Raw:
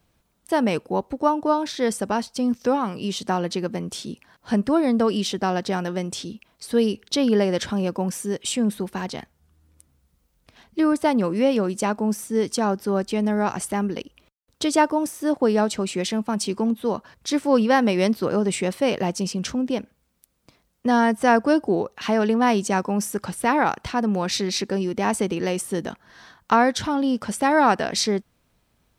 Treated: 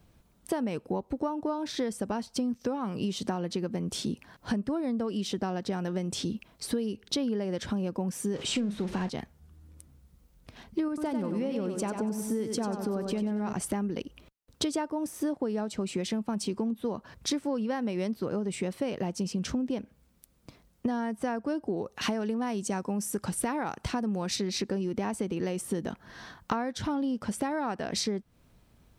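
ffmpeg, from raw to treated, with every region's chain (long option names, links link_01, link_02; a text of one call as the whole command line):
ffmpeg -i in.wav -filter_complex "[0:a]asettb=1/sr,asplit=3[link_01][link_02][link_03];[link_01]atrim=end=8.344[link_04];[link_02]atrim=start=8.34:end=9.09,asetpts=PTS-STARTPTS,afade=type=in:duration=0.004:curve=qsin,afade=type=out:start_time=0.746:duration=0.004:curve=qsin,aeval=exprs='val(0)+0.5*0.0299*sgn(val(0))':channel_layout=same,lowpass=5800,asplit=2[link_05][link_06];[link_06]adelay=44,volume=-12.5dB[link_07];[link_05][link_07]amix=inputs=2:normalize=0,atrim=end_sample=33075[link_08];[link_03]atrim=start=9.086[link_09];[link_04][link_08]acrossfade=duration=0.004:curve1=hsin:curve2=qsin[link_10];[link_10][link_09]acrossfade=duration=0.004:curve1=qsin:curve2=hsin,asettb=1/sr,asplit=3[link_11][link_12][link_13];[link_11]atrim=end=10.884[link_14];[link_12]atrim=start=10.88:end=13.53,asetpts=PTS-STARTPTS,afade=type=in:duration=0.004:curve=qsin,afade=type=out:start_time=2.646:duration=0.004:curve=qsin,acompressor=threshold=-26dB:ratio=1.5:attack=3.2:release=140:knee=1:detection=peak,aecho=1:1:95|190|285|380|475:0.447|0.197|0.0865|0.0381|0.0167,atrim=end_sample=116865[link_15];[link_13]atrim=start=13.526[link_16];[link_14][link_15]acrossfade=duration=0.004:curve1=hsin:curve2=qsin[link_17];[link_17][link_16]acrossfade=duration=0.004:curve1=qsin:curve2=hsin,asettb=1/sr,asplit=3[link_18][link_19][link_20];[link_18]atrim=end=21.764[link_21];[link_19]atrim=start=21.76:end=24.36,asetpts=PTS-STARTPTS,afade=type=in:duration=0.004:curve=qsin,afade=type=out:start_time=2.596:duration=0.004:curve=qsin,deesser=0.3,equalizer=frequency=9100:width=0.7:gain=6.5[link_22];[link_20]atrim=start=24.356[link_23];[link_21][link_22]acrossfade=duration=0.004:curve1=hsin:curve2=qsin[link_24];[link_24][link_23]acrossfade=duration=0.004:curve1=qsin:curve2=hsin,lowshelf=frequency=450:gain=7,acompressor=threshold=-27dB:ratio=16" out.wav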